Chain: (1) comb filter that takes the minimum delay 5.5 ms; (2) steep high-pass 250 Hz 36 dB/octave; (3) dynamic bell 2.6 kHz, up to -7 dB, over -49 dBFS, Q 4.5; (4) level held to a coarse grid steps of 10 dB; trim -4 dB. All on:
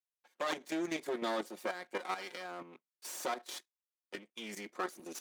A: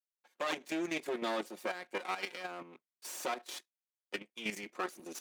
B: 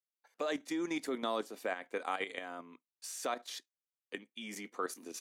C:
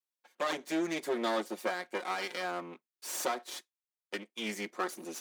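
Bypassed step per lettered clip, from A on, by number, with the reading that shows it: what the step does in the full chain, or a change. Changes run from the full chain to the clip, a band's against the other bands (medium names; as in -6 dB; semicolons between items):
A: 3, 2 kHz band +2.5 dB; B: 1, 125 Hz band -1.5 dB; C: 4, momentary loudness spread change -2 LU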